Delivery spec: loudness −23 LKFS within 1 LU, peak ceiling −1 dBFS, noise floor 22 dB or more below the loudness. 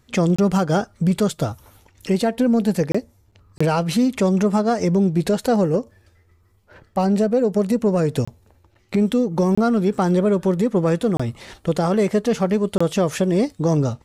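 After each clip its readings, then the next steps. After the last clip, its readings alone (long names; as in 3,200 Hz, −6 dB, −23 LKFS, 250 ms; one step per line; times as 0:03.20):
number of dropouts 7; longest dropout 25 ms; integrated loudness −20.0 LKFS; sample peak −10.0 dBFS; target loudness −23.0 LKFS
→ repair the gap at 0:00.36/0:02.92/0:03.58/0:08.25/0:09.55/0:11.17/0:12.78, 25 ms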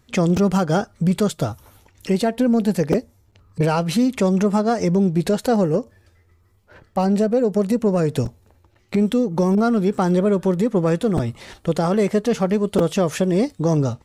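number of dropouts 0; integrated loudness −20.0 LKFS; sample peak −5.5 dBFS; target loudness −23.0 LKFS
→ level −3 dB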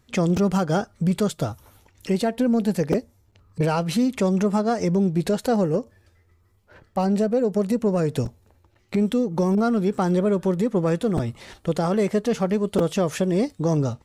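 integrated loudness −23.0 LKFS; sample peak −8.5 dBFS; background noise floor −61 dBFS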